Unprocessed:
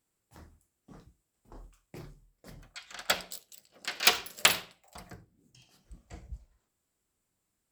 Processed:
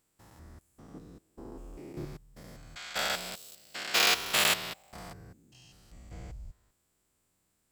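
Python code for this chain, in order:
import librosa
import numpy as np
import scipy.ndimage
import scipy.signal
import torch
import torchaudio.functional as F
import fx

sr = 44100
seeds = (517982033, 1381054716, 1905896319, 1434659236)

y = fx.spec_steps(x, sr, hold_ms=200)
y = fx.peak_eq(y, sr, hz=320.0, db=11.5, octaves=1.7, at=(0.94, 2.05))
y = y * librosa.db_to_amplitude(7.0)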